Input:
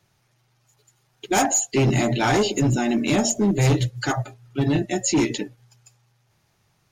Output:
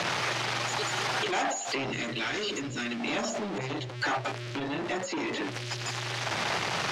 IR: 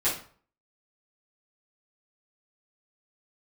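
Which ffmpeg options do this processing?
-filter_complex "[0:a]aeval=exprs='val(0)+0.5*0.0447*sgn(val(0))':channel_layout=same,acompressor=threshold=-31dB:ratio=5,highpass=130,lowpass=5900,bandreject=frequency=50:width_type=h:width=6,bandreject=frequency=100:width_type=h:width=6,bandreject=frequency=150:width_type=h:width=6,bandreject=frequency=200:width_type=h:width=6,bandreject=frequency=250:width_type=h:width=6,bandreject=frequency=300:width_type=h:width=6,bandreject=frequency=350:width_type=h:width=6,bandreject=frequency=400:width_type=h:width=6,acrossover=split=1900[link_01][link_02];[link_01]asoftclip=type=tanh:threshold=-39.5dB[link_03];[link_02]alimiter=level_in=12dB:limit=-24dB:level=0:latency=1,volume=-12dB[link_04];[link_03][link_04]amix=inputs=2:normalize=0,asettb=1/sr,asplit=3[link_05][link_06][link_07];[link_05]atrim=end=1.924[link_08];[link_06]atrim=start=1.92:end=3,asetpts=PTS-STARTPTS,afade=type=in:duration=0.004:curve=qsin,afade=type=out:start_time=1.076:duration=0.004:curve=qsin,equalizer=frequency=810:width_type=o:width=0.99:gain=-12.5[link_09];[link_07]atrim=start=2.996[link_10];[link_08][link_09]acrossfade=duration=0.004:curve1=hsin:curve2=qsin[link_11];[link_11][link_10]acrossfade=duration=0.004:curve1=qsin:curve2=hsin,asplit=2[link_12][link_13];[link_13]highpass=frequency=720:poles=1,volume=15dB,asoftclip=type=tanh:threshold=-16dB[link_14];[link_12][link_14]amix=inputs=2:normalize=0,lowpass=frequency=2300:poles=1,volume=-6dB,asettb=1/sr,asplit=3[link_15][link_16][link_17];[link_15]atrim=end=3.584[link_18];[link_16]atrim=start=3.58:end=5.42,asetpts=PTS-STARTPTS,afade=type=in:duration=0.004:curve=qsin,afade=type=out:start_time=1.836:duration=0.004:curve=qsin,adynamicequalizer=threshold=0.00398:dfrequency=1800:dqfactor=0.7:tfrequency=1800:tqfactor=0.7:attack=5:release=100:ratio=0.375:range=2:mode=cutabove:tftype=highshelf[link_19];[link_17]atrim=start=5.416[link_20];[link_18][link_19]acrossfade=duration=0.004:curve1=hsin:curve2=qsin[link_21];[link_21][link_20]acrossfade=duration=0.004:curve1=qsin:curve2=hsin,volume=6dB"

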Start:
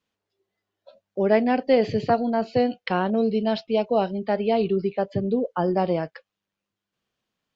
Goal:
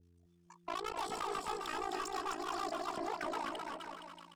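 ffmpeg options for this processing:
ffmpeg -i in.wav -filter_complex "[0:a]equalizer=frequency=340:width=0.71:gain=-9,acrossover=split=230[link_01][link_02];[link_01]acompressor=threshold=-47dB:ratio=6[link_03];[link_03][link_02]amix=inputs=2:normalize=0,alimiter=limit=-19.5dB:level=0:latency=1:release=308,asoftclip=type=tanh:threshold=-34.5dB,tremolo=f=32:d=0.974,aeval=exprs='val(0)+0.000447*(sin(2*PI*50*n/s)+sin(2*PI*2*50*n/s)/2+sin(2*PI*3*50*n/s)/3+sin(2*PI*4*50*n/s)/4+sin(2*PI*5*50*n/s)/5)':channel_layout=same,aecho=1:1:450|810|1098|1328|1513:0.631|0.398|0.251|0.158|0.1,asetrate=76440,aresample=44100,adynamicequalizer=threshold=0.00224:dfrequency=1900:dqfactor=0.7:tfrequency=1900:tqfactor=0.7:attack=5:release=100:ratio=0.375:range=1.5:mode=cutabove:tftype=highshelf,volume=2dB" out.wav

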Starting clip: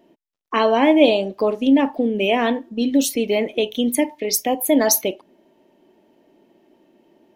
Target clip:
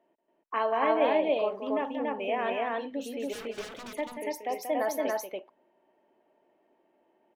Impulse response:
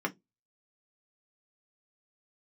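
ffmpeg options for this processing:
-filter_complex "[0:a]acrossover=split=510 2200:gain=0.178 1 0.126[link_01][link_02][link_03];[link_01][link_02][link_03]amix=inputs=3:normalize=0,asplit=3[link_04][link_05][link_06];[link_04]afade=type=out:start_time=3.32:duration=0.02[link_07];[link_05]aeval=exprs='0.0299*(abs(mod(val(0)/0.0299+3,4)-2)-1)':channel_layout=same,afade=type=in:start_time=3.32:duration=0.02,afade=type=out:start_time=3.89:duration=0.02[link_08];[link_06]afade=type=in:start_time=3.89:duration=0.02[link_09];[link_07][link_08][link_09]amix=inputs=3:normalize=0,aecho=1:1:183.7|282.8:0.398|0.891,volume=-8dB"

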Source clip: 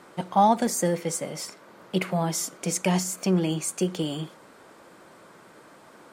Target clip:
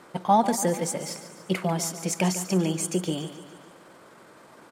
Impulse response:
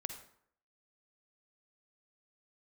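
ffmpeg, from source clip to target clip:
-af "atempo=1.3,aecho=1:1:144|288|432|576|720|864:0.237|0.133|0.0744|0.0416|0.0233|0.0131"

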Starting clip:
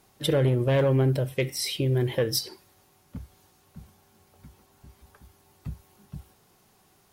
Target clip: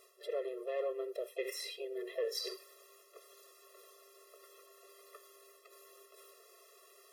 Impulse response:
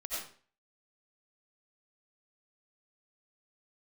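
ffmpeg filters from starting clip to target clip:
-filter_complex "[0:a]acrossover=split=2900[link_01][link_02];[link_02]acompressor=threshold=-42dB:ratio=4:attack=1:release=60[link_03];[link_01][link_03]amix=inputs=2:normalize=0,asplit=2[link_04][link_05];[link_05]asetrate=55563,aresample=44100,atempo=0.793701,volume=-13dB[link_06];[link_04][link_06]amix=inputs=2:normalize=0,areverse,acompressor=threshold=-37dB:ratio=8,areverse,afftfilt=real='re*eq(mod(floor(b*sr/1024/350),2),1)':imag='im*eq(mod(floor(b*sr/1024/350),2),1)':win_size=1024:overlap=0.75,volume=5dB"

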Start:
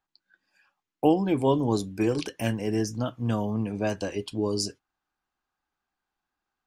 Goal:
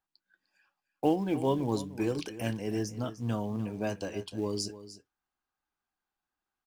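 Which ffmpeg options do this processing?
ffmpeg -i in.wav -filter_complex "[0:a]asplit=2[link_01][link_02];[link_02]acrusher=bits=4:mode=log:mix=0:aa=0.000001,volume=-9.5dB[link_03];[link_01][link_03]amix=inputs=2:normalize=0,aecho=1:1:301:0.188,volume=-8dB" out.wav

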